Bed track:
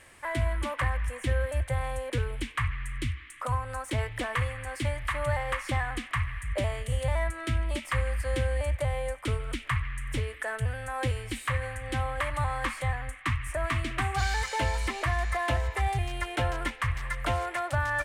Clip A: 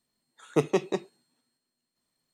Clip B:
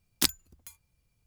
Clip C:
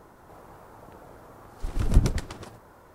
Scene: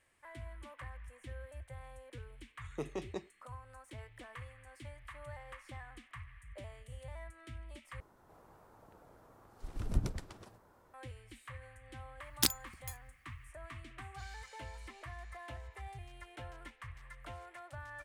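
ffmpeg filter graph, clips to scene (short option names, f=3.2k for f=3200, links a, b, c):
-filter_complex "[0:a]volume=-19.5dB[a];[1:a]alimiter=limit=-17dB:level=0:latency=1:release=24[b];[2:a]alimiter=level_in=8.5dB:limit=-1dB:release=50:level=0:latency=1[c];[a]asplit=2[d][e];[d]atrim=end=8.004[f];[3:a]atrim=end=2.94,asetpts=PTS-STARTPTS,volume=-12.5dB[g];[e]atrim=start=10.936[h];[b]atrim=end=2.33,asetpts=PTS-STARTPTS,volume=-11.5dB,afade=t=in:d=0.004:c=hsin,afade=t=out:st=2.326:d=0.004:c=hsin,adelay=2220[i];[c]atrim=end=1.26,asetpts=PTS-STARTPTS,volume=-7.5dB,afade=t=in:d=0.004:c=hsin,afade=t=out:st=1.256:d=0.004:c=hsin,adelay=12210[j];[f][g]acrossfade=d=0.004:c1=hsin:c2=hsin[k];[k][h]acrossfade=d=0.004:c1=hsin:c2=hsin[l];[l][i][j]amix=inputs=3:normalize=0"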